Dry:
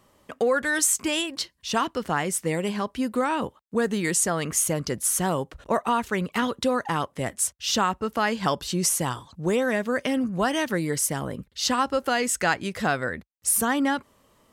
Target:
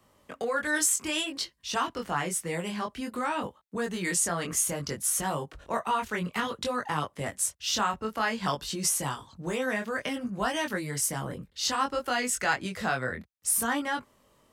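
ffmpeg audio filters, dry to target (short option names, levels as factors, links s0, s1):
-filter_complex "[0:a]acrossover=split=150|650|3300[s0][s1][s2][s3];[s1]alimiter=level_in=1.33:limit=0.0631:level=0:latency=1:release=209,volume=0.75[s4];[s0][s4][s2][s3]amix=inputs=4:normalize=0,flanger=delay=20:depth=3.4:speed=0.57"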